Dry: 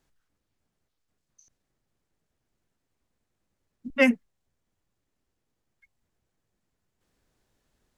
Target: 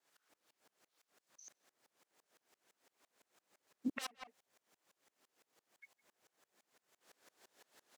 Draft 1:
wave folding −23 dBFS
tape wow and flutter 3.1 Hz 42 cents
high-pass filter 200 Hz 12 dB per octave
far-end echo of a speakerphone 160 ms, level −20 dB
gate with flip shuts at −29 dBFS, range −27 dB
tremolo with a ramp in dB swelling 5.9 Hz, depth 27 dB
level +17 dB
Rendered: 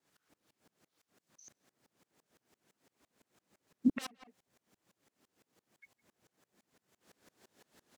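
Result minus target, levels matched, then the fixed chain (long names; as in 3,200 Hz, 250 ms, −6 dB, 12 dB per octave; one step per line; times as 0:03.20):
500 Hz band −5.5 dB
wave folding −23 dBFS
tape wow and flutter 3.1 Hz 42 cents
high-pass filter 490 Hz 12 dB per octave
far-end echo of a speakerphone 160 ms, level −20 dB
gate with flip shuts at −29 dBFS, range −27 dB
tremolo with a ramp in dB swelling 5.9 Hz, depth 27 dB
level +17 dB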